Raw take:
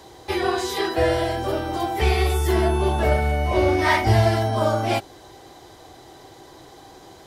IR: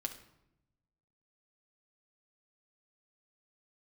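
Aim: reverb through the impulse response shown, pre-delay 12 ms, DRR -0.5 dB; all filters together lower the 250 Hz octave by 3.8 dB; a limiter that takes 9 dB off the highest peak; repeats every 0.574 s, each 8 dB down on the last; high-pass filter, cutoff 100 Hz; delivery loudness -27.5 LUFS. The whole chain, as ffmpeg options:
-filter_complex "[0:a]highpass=100,equalizer=f=250:t=o:g=-6.5,alimiter=limit=-15.5dB:level=0:latency=1,aecho=1:1:574|1148|1722|2296|2870:0.398|0.159|0.0637|0.0255|0.0102,asplit=2[a][b];[1:a]atrim=start_sample=2205,adelay=12[c];[b][c]afir=irnorm=-1:irlink=0,volume=1dB[d];[a][d]amix=inputs=2:normalize=0,volume=-6dB"

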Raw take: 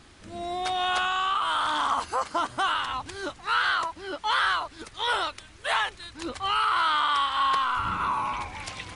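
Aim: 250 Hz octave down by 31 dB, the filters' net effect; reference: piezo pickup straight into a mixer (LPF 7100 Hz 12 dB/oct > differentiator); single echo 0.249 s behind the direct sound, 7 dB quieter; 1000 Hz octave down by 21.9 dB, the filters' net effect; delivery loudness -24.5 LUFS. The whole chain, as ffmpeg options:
-af "lowpass=7.1k,aderivative,equalizer=f=250:t=o:g=-5.5,equalizer=f=1k:t=o:g=-7.5,aecho=1:1:249:0.447,volume=15dB"

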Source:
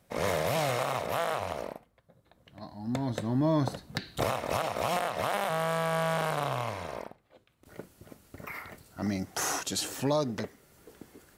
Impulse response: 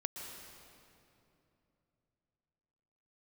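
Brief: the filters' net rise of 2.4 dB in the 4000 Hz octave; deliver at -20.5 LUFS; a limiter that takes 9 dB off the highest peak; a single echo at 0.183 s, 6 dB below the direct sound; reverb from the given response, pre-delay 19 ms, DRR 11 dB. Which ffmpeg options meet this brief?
-filter_complex "[0:a]equalizer=f=4k:t=o:g=3,alimiter=level_in=0.5dB:limit=-24dB:level=0:latency=1,volume=-0.5dB,aecho=1:1:183:0.501,asplit=2[a][b];[1:a]atrim=start_sample=2205,adelay=19[c];[b][c]afir=irnorm=-1:irlink=0,volume=-11dB[d];[a][d]amix=inputs=2:normalize=0,volume=14dB"

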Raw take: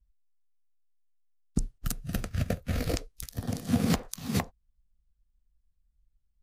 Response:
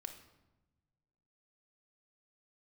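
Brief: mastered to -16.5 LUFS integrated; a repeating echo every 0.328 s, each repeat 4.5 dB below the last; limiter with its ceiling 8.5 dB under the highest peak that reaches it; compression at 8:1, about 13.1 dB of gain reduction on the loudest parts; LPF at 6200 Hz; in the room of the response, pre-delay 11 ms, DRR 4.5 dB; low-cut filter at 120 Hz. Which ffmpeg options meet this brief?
-filter_complex "[0:a]highpass=120,lowpass=6.2k,acompressor=threshold=-36dB:ratio=8,alimiter=level_in=5.5dB:limit=-24dB:level=0:latency=1,volume=-5.5dB,aecho=1:1:328|656|984|1312|1640|1968|2296|2624|2952:0.596|0.357|0.214|0.129|0.0772|0.0463|0.0278|0.0167|0.01,asplit=2[a][b];[1:a]atrim=start_sample=2205,adelay=11[c];[b][c]afir=irnorm=-1:irlink=0,volume=-1dB[d];[a][d]amix=inputs=2:normalize=0,volume=26dB"

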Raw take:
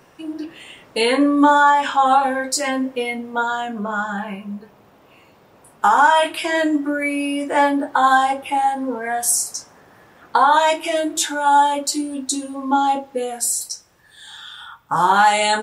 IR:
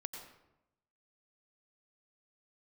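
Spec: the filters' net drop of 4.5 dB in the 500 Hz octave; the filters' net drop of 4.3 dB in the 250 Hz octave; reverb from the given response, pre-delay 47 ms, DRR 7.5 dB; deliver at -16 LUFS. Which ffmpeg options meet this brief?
-filter_complex "[0:a]equalizer=f=250:t=o:g=-3.5,equalizer=f=500:t=o:g=-5,asplit=2[a][b];[1:a]atrim=start_sample=2205,adelay=47[c];[b][c]afir=irnorm=-1:irlink=0,volume=-5.5dB[d];[a][d]amix=inputs=2:normalize=0,volume=3dB"

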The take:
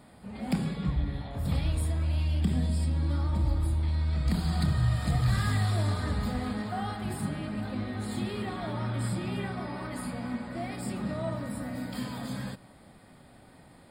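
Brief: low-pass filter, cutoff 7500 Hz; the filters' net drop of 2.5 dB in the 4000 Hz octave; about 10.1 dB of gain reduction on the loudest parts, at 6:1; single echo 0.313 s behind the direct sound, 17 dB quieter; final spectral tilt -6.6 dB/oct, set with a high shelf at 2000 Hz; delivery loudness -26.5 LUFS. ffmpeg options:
-af "lowpass=7.5k,highshelf=f=2k:g=6,equalizer=f=4k:t=o:g=-8.5,acompressor=threshold=-33dB:ratio=6,aecho=1:1:313:0.141,volume=11dB"

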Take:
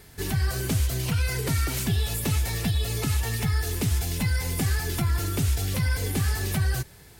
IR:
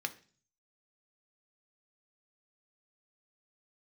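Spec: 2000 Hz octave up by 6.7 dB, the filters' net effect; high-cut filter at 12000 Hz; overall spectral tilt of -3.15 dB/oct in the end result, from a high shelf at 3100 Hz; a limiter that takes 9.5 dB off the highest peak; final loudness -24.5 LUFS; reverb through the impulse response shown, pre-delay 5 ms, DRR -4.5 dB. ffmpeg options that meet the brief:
-filter_complex "[0:a]lowpass=12k,equalizer=f=2k:t=o:g=5.5,highshelf=f=3.1k:g=8,alimiter=limit=-21.5dB:level=0:latency=1,asplit=2[a][b];[1:a]atrim=start_sample=2205,adelay=5[c];[b][c]afir=irnorm=-1:irlink=0,volume=2dB[d];[a][d]amix=inputs=2:normalize=0,volume=1.5dB"

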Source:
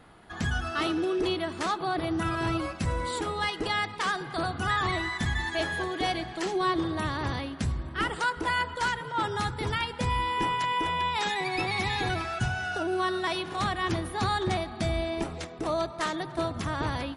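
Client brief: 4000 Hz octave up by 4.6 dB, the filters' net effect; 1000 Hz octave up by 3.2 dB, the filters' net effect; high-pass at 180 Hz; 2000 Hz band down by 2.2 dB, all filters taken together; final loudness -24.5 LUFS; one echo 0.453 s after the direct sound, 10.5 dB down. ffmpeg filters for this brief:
-af "highpass=180,equalizer=f=1k:t=o:g=5,equalizer=f=2k:t=o:g=-6.5,equalizer=f=4k:t=o:g=7.5,aecho=1:1:453:0.299,volume=3.5dB"

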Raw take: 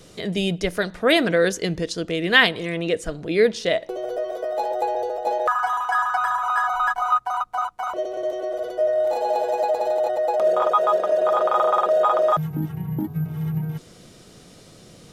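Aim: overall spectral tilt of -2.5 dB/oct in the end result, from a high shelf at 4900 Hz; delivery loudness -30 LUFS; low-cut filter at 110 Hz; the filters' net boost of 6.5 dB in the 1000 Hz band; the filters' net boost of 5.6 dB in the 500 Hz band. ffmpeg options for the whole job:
-af "highpass=110,equalizer=f=500:t=o:g=4.5,equalizer=f=1k:t=o:g=7,highshelf=f=4.9k:g=6.5,volume=-13.5dB"

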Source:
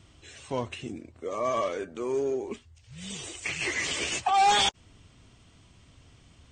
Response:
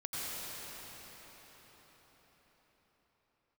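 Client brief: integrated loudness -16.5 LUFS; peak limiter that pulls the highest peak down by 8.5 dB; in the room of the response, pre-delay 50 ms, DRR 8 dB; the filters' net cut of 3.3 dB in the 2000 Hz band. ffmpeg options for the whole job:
-filter_complex "[0:a]equalizer=f=2k:t=o:g=-4,alimiter=limit=-22.5dB:level=0:latency=1,asplit=2[a][b];[1:a]atrim=start_sample=2205,adelay=50[c];[b][c]afir=irnorm=-1:irlink=0,volume=-12.5dB[d];[a][d]amix=inputs=2:normalize=0,volume=16.5dB"

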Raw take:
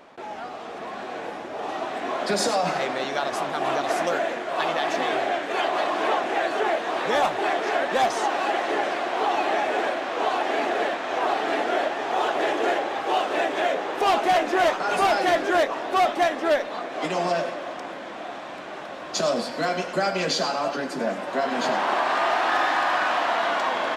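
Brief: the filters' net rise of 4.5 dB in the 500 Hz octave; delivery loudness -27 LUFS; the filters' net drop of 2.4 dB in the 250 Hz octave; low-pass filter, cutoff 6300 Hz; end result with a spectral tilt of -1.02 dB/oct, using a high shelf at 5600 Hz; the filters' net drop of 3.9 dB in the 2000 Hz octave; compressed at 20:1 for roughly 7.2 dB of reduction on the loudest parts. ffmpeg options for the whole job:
-af "lowpass=6.3k,equalizer=f=250:t=o:g=-9,equalizer=f=500:t=o:g=8.5,equalizer=f=2k:t=o:g=-6,highshelf=f=5.6k:g=3.5,acompressor=threshold=-20dB:ratio=20,volume=-1.5dB"

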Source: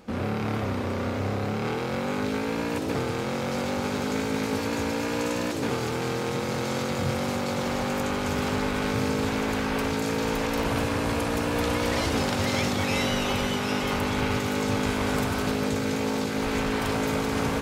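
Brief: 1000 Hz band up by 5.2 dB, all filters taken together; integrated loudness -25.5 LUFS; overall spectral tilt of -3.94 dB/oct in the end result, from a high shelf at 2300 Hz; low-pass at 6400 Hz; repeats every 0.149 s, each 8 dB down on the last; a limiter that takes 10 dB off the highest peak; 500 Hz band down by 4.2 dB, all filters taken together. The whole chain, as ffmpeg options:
-af "lowpass=6.4k,equalizer=f=500:t=o:g=-7,equalizer=f=1k:t=o:g=7,highshelf=f=2.3k:g=7.5,alimiter=limit=-20.5dB:level=0:latency=1,aecho=1:1:149|298|447|596|745:0.398|0.159|0.0637|0.0255|0.0102,volume=3dB"

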